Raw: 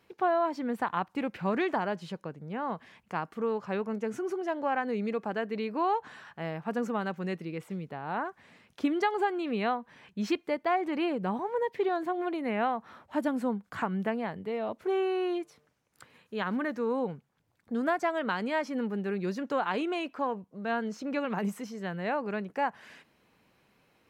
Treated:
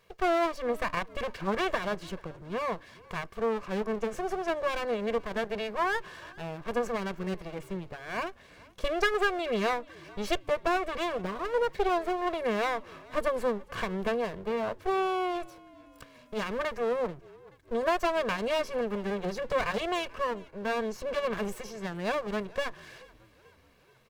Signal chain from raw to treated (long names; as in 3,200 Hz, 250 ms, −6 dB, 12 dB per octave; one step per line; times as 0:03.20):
lower of the sound and its delayed copy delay 1.8 ms
echo with shifted repeats 433 ms, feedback 56%, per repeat −46 Hz, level −23.5 dB
level +3.5 dB